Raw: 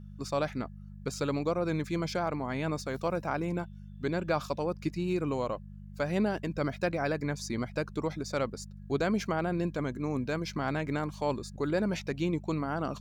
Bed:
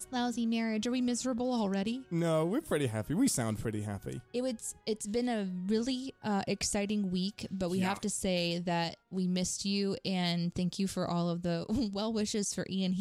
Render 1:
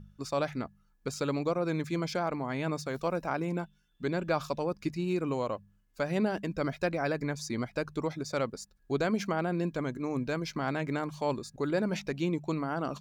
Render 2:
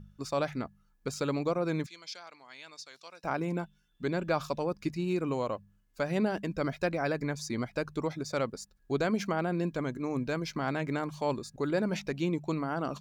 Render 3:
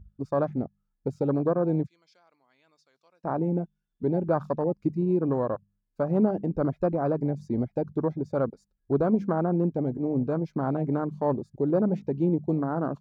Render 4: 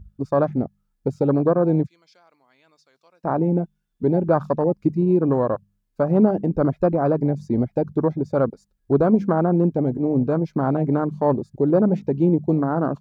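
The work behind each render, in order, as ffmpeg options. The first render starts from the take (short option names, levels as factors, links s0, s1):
-af "bandreject=f=50:t=h:w=4,bandreject=f=100:t=h:w=4,bandreject=f=150:t=h:w=4,bandreject=f=200:t=h:w=4"
-filter_complex "[0:a]asettb=1/sr,asplit=3[s0][s1][s2];[s0]atrim=end=1.864[s3];[s1]atrim=start=1.86:end=3.24,asetpts=PTS-STARTPTS,afade=t=in:d=0.004:c=qsin,afade=t=out:st=1.376:d=0.004:c=qsin,bandpass=f=4600:t=q:w=1.4[s4];[s2]atrim=start=3.236[s5];[s3][s4]acrossfade=d=0.004:c1=hsin:c2=qsin[s6];[s6][s5]acrossfade=d=0.004:c1=qsin:c2=hsin"
-af "afwtdn=0.0224,tiltshelf=f=1500:g=7"
-af "volume=2.11"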